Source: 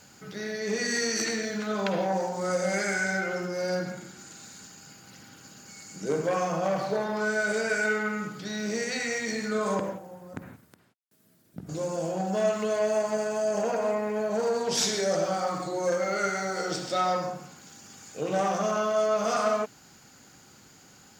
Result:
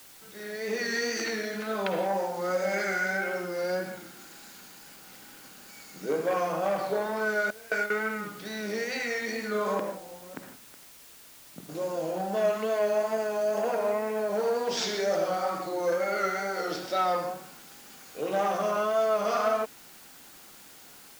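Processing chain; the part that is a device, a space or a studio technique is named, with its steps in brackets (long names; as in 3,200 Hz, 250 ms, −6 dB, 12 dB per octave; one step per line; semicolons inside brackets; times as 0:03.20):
0:07.50–0:08.04: noise gate with hold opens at −17 dBFS
dictaphone (band-pass filter 250–4,300 Hz; automatic gain control gain up to 9 dB; tape wow and flutter; white noise bed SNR 21 dB)
level −9 dB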